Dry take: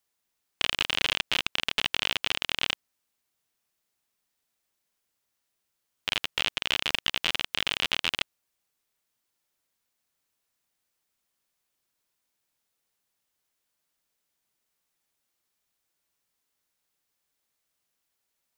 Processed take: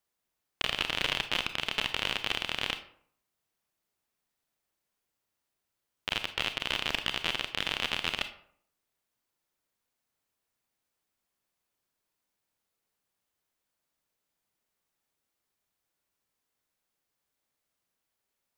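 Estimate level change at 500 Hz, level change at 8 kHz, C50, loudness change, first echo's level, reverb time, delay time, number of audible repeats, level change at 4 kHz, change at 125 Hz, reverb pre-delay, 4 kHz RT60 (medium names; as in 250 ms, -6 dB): 0.0 dB, -5.0 dB, 12.0 dB, -3.5 dB, no echo, 0.60 s, no echo, no echo, -4.0 dB, +0.5 dB, 28 ms, 0.35 s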